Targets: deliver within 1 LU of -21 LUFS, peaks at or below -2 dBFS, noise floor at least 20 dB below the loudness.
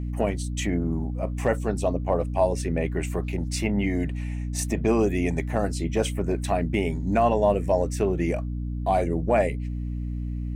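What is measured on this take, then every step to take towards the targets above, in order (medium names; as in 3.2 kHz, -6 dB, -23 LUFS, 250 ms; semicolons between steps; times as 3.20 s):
hum 60 Hz; highest harmonic 300 Hz; hum level -27 dBFS; loudness -26.0 LUFS; peak level -10.0 dBFS; loudness target -21.0 LUFS
-> de-hum 60 Hz, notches 5; trim +5 dB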